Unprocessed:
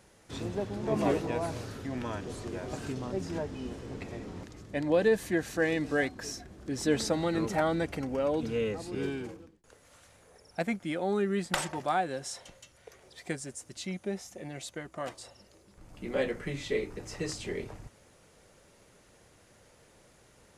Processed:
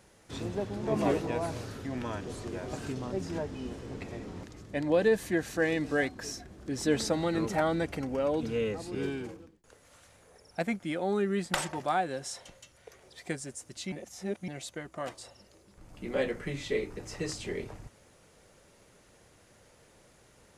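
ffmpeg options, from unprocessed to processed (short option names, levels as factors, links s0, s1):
-filter_complex "[0:a]asplit=3[s0][s1][s2];[s0]atrim=end=13.922[s3];[s1]atrim=start=13.918:end=14.482,asetpts=PTS-STARTPTS,areverse[s4];[s2]atrim=start=14.478[s5];[s3][s4]acrossfade=d=0.004:c1=hsin:c2=hsin[s6];[s6][s5]acrossfade=d=0.004:c1=hsin:c2=hsin"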